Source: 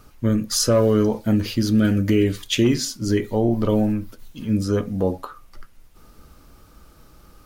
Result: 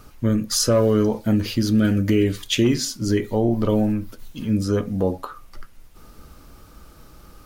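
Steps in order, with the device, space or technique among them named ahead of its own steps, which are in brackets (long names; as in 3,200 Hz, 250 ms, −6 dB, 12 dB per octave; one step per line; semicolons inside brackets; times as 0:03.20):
parallel compression (in parallel at −3 dB: downward compressor, threshold −30 dBFS, peak gain reduction 15.5 dB)
on the sum: level −1.5 dB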